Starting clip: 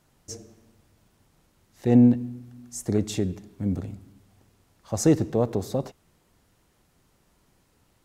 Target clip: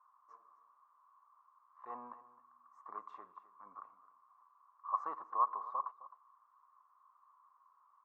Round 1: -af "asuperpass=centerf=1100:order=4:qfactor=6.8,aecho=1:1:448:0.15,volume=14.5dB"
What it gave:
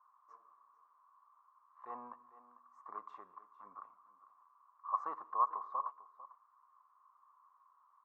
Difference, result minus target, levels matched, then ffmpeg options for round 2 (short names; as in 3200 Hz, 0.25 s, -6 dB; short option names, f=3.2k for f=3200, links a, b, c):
echo 0.186 s late
-af "asuperpass=centerf=1100:order=4:qfactor=6.8,aecho=1:1:262:0.15,volume=14.5dB"